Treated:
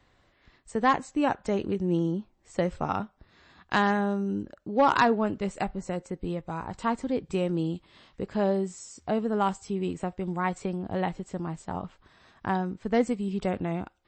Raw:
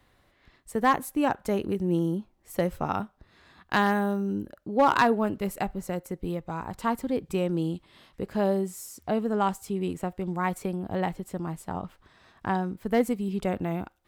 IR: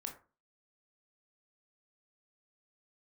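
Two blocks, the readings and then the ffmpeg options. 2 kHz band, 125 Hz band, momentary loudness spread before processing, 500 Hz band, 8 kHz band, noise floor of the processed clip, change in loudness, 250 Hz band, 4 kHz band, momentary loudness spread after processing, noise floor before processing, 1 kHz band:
-0.5 dB, -0.5 dB, 11 LU, -0.5 dB, -3.0 dB, -66 dBFS, -0.5 dB, -0.5 dB, 0.0 dB, 11 LU, -65 dBFS, -0.5 dB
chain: -ar 22050 -c:a libmp3lame -b:a 32k

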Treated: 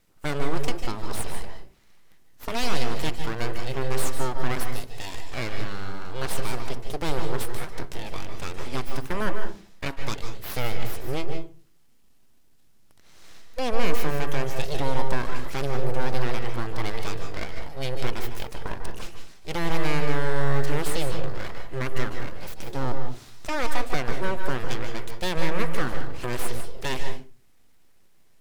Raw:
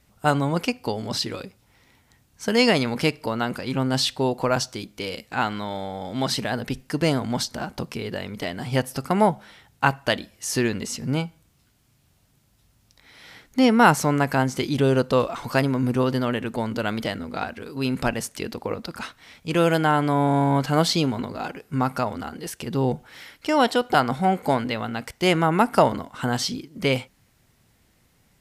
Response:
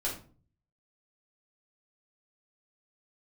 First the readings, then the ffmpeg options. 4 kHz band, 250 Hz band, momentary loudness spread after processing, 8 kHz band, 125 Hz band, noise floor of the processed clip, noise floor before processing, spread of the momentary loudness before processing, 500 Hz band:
-7.0 dB, -11.0 dB, 10 LU, -5.0 dB, -5.0 dB, -53 dBFS, -63 dBFS, 12 LU, -7.0 dB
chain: -filter_complex "[0:a]alimiter=limit=0.251:level=0:latency=1:release=56,aeval=exprs='abs(val(0))':c=same,asplit=2[s0][s1];[1:a]atrim=start_sample=2205,asetrate=57330,aresample=44100,adelay=144[s2];[s1][s2]afir=irnorm=-1:irlink=0,volume=0.376[s3];[s0][s3]amix=inputs=2:normalize=0,volume=0.708"

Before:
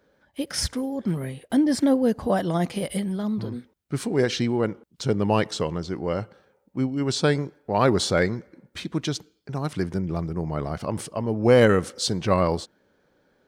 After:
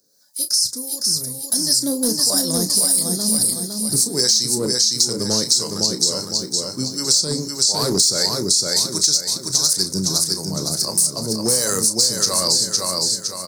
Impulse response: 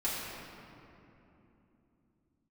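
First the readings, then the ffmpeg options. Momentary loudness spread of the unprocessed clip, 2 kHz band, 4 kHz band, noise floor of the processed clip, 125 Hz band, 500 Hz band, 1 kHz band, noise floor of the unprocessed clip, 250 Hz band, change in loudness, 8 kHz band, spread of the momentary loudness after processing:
12 LU, -5.5 dB, +16.5 dB, -33 dBFS, -3.0 dB, -3.5 dB, -4.0 dB, -67 dBFS, -2.0 dB, +7.5 dB, +22.0 dB, 6 LU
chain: -filter_complex "[0:a]aexciter=amount=12.4:drive=4.6:freq=4500,acrossover=split=580[s0][s1];[s0]aeval=exprs='val(0)*(1-0.7/2+0.7/2*cos(2*PI*1.5*n/s))':c=same[s2];[s1]aeval=exprs='val(0)*(1-0.7/2-0.7/2*cos(2*PI*1.5*n/s))':c=same[s3];[s2][s3]amix=inputs=2:normalize=0,alimiter=limit=0.237:level=0:latency=1:release=26,highpass=f=110:w=0.5412,highpass=f=110:w=1.3066,aecho=1:1:509|1018|1527|2036|2545:0.596|0.256|0.11|0.0474|0.0204,dynaudnorm=f=410:g=9:m=3.98,equalizer=f=750:w=6.4:g=-5,asplit=2[s4][s5];[s5]adelay=32,volume=0.299[s6];[s4][s6]amix=inputs=2:normalize=0,asoftclip=type=hard:threshold=0.355,highshelf=f=3600:t=q:w=3:g=8.5,acompressor=threshold=0.398:ratio=6,volume=0.531"

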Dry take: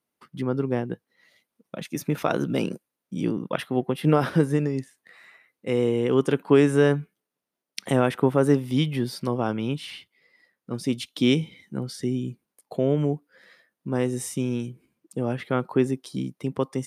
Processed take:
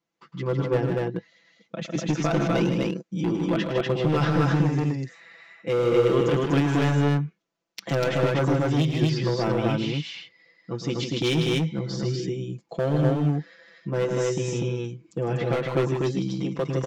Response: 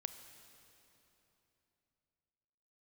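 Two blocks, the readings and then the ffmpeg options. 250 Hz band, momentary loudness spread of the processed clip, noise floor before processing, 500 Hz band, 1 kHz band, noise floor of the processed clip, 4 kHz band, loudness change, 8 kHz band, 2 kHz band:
-0.5 dB, 11 LU, -85 dBFS, 0.0 dB, +1.5 dB, -69 dBFS, +2.5 dB, +0.5 dB, -0.5 dB, +2.0 dB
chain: -af "aecho=1:1:6:0.99,alimiter=limit=0.316:level=0:latency=1:release=27,aresample=16000,aresample=44100,volume=7.08,asoftclip=hard,volume=0.141,aecho=1:1:107.9|154.5|244.9:0.282|0.501|0.891,volume=0.794"

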